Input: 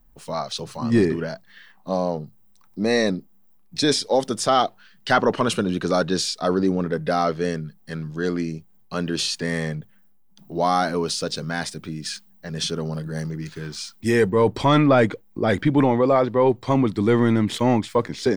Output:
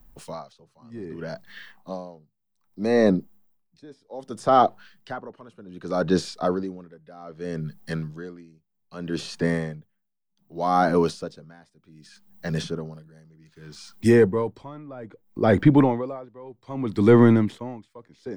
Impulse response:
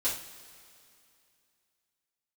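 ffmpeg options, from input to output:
-filter_complex "[0:a]acrossover=split=340|490|1500[link_01][link_02][link_03][link_04];[link_04]acompressor=threshold=-40dB:ratio=6[link_05];[link_01][link_02][link_03][link_05]amix=inputs=4:normalize=0,aeval=exprs='val(0)*pow(10,-29*(0.5-0.5*cos(2*PI*0.64*n/s))/20)':channel_layout=same,volume=4.5dB"

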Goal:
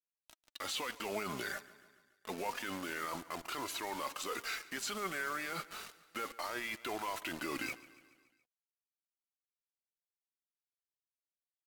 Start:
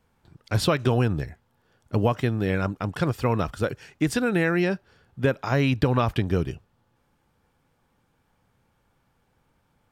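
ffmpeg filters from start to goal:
ffmpeg -i in.wav -filter_complex "[0:a]highpass=330,agate=range=-33dB:threshold=-60dB:ratio=3:detection=peak,tiltshelf=frequency=670:gain=-9,areverse,acompressor=threshold=-38dB:ratio=6,areverse,alimiter=level_in=12.5dB:limit=-24dB:level=0:latency=1:release=22,volume=-12.5dB,acrusher=bits=8:mix=0:aa=0.000001,asetrate=37485,aresample=44100,flanger=delay=2.9:depth=2.3:regen=45:speed=0.29:shape=sinusoidal,asplit=2[link_01][link_02];[link_02]aecho=0:1:142|284|426|568|710:0.112|0.0662|0.0391|0.023|0.0136[link_03];[link_01][link_03]amix=inputs=2:normalize=0,volume=11.5dB" out.wav

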